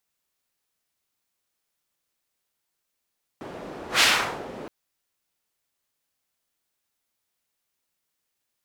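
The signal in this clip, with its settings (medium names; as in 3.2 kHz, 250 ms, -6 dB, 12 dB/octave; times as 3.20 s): whoosh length 1.27 s, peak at 0.60 s, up 0.13 s, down 0.47 s, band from 480 Hz, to 3 kHz, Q 0.94, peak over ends 20.5 dB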